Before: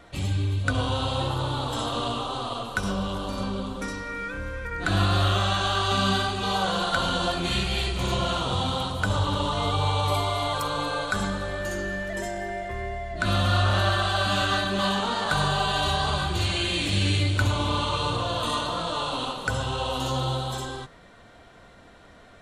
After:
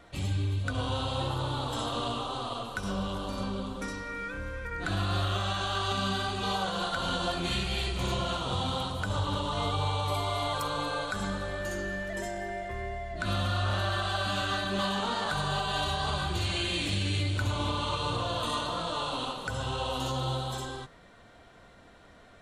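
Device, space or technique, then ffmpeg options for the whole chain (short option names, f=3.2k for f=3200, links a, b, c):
clipper into limiter: -af "asoftclip=type=hard:threshold=-11.5dB,alimiter=limit=-16dB:level=0:latency=1:release=187,volume=-4dB"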